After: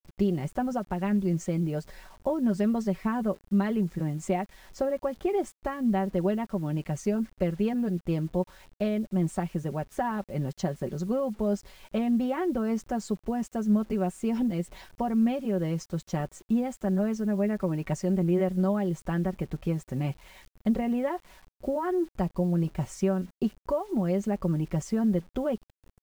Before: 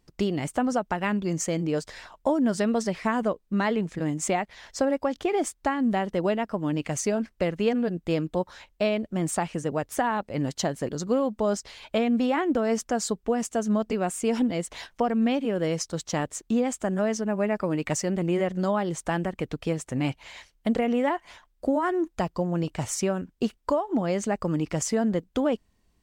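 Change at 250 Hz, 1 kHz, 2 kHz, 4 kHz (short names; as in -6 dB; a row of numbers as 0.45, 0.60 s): -0.5, -5.5, -8.5, -10.5 dB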